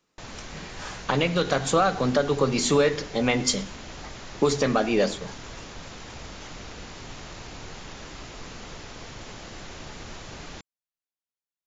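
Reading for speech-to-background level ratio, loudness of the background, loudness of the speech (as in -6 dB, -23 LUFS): 16.5 dB, -40.5 LUFS, -24.0 LUFS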